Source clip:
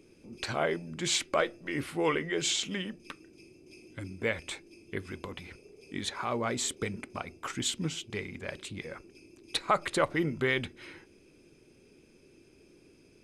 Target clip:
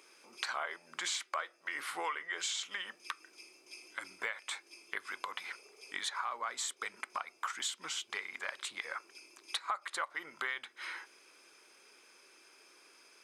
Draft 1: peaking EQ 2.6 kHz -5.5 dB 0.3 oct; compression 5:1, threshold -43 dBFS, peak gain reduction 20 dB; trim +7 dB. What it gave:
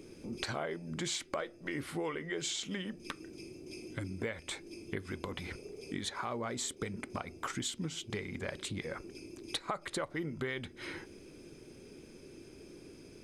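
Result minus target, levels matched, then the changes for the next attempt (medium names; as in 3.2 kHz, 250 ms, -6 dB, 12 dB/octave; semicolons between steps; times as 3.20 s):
1 kHz band -3.5 dB
add first: resonant high-pass 1.1 kHz, resonance Q 1.9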